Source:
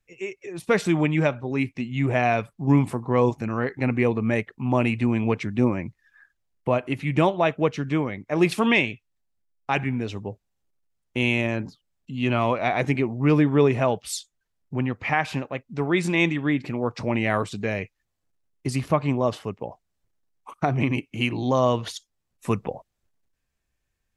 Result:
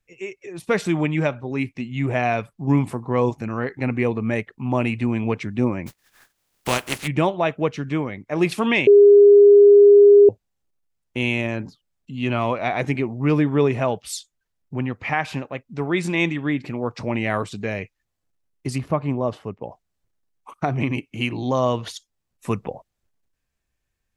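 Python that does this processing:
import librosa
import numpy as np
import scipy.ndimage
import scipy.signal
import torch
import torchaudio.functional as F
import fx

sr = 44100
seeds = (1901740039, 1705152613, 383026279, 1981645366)

y = fx.spec_flatten(x, sr, power=0.37, at=(5.86, 7.06), fade=0.02)
y = fx.high_shelf(y, sr, hz=2200.0, db=-10.0, at=(18.78, 19.63))
y = fx.edit(y, sr, fx.bleep(start_s=8.87, length_s=1.42, hz=407.0, db=-6.5), tone=tone)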